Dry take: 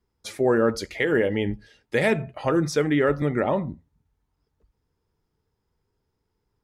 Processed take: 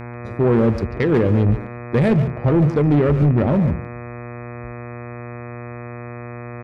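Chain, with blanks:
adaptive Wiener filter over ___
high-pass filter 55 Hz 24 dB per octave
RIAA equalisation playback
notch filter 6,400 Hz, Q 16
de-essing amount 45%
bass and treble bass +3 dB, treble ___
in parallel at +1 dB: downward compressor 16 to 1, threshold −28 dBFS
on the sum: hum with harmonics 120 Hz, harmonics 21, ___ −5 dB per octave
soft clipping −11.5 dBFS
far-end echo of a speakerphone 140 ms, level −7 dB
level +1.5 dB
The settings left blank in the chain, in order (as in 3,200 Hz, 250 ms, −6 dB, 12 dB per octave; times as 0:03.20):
41 samples, +7 dB, −34 dBFS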